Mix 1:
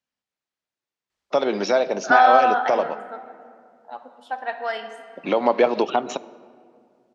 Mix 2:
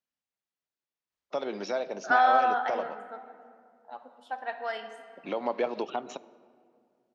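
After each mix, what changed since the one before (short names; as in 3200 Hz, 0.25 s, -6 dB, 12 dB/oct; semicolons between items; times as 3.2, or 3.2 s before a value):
first voice -11.5 dB; second voice -6.5 dB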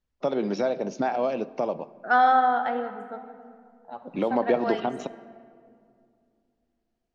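first voice: entry -1.10 s; master: remove HPF 870 Hz 6 dB/oct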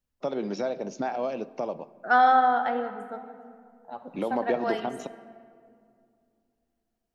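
first voice -4.0 dB; master: remove LPF 5700 Hz 12 dB/oct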